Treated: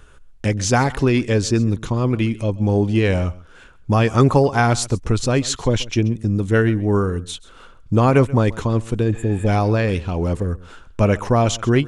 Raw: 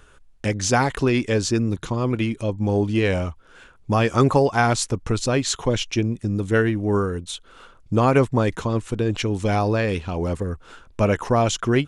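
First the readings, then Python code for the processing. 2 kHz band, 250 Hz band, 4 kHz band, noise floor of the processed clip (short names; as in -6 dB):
+1.0 dB, +3.0 dB, +1.0 dB, -45 dBFS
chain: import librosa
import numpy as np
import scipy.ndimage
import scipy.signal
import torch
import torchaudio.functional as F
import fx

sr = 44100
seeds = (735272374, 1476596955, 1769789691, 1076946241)

p1 = fx.spec_repair(x, sr, seeds[0], start_s=9.15, length_s=0.29, low_hz=900.0, high_hz=6900.0, source='before')
p2 = fx.low_shelf(p1, sr, hz=190.0, db=5.5)
p3 = p2 + fx.echo_single(p2, sr, ms=133, db=-20.0, dry=0)
y = F.gain(torch.from_numpy(p3), 1.0).numpy()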